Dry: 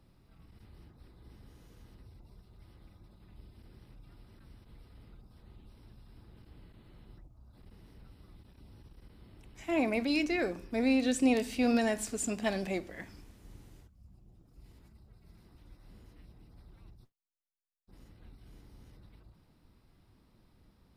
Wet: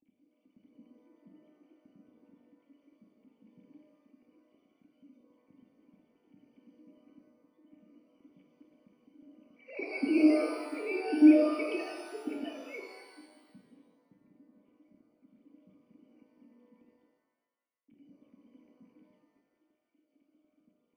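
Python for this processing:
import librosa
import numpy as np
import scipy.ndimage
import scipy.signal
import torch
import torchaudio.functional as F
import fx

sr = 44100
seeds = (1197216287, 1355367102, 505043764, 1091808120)

y = fx.sine_speech(x, sr)
y = fx.formant_cascade(y, sr, vowel='i')
y = fx.rev_shimmer(y, sr, seeds[0], rt60_s=1.2, semitones=12, shimmer_db=-8, drr_db=2.5)
y = y * 10.0 ** (6.5 / 20.0)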